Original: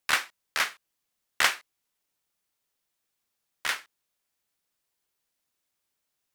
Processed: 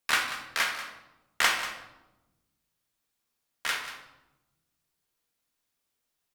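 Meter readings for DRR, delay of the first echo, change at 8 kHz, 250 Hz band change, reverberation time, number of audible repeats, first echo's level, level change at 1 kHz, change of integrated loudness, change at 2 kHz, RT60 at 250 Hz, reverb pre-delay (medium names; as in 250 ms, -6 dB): 1.5 dB, 188 ms, -0.5 dB, +2.5 dB, 1.0 s, 1, -13.0 dB, +1.0 dB, -0.5 dB, 0.0 dB, 1.7 s, 4 ms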